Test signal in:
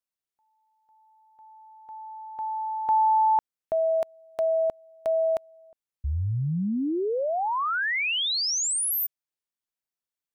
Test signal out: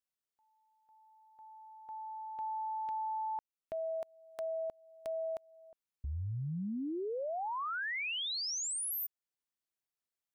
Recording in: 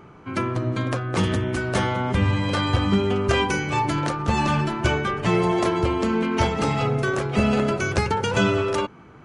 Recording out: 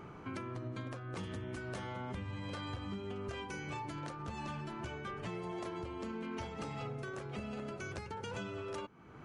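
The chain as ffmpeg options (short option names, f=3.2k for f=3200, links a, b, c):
-af "acompressor=threshold=-31dB:ratio=16:attack=0.46:release=745:knee=6:detection=peak,volume=-3.5dB"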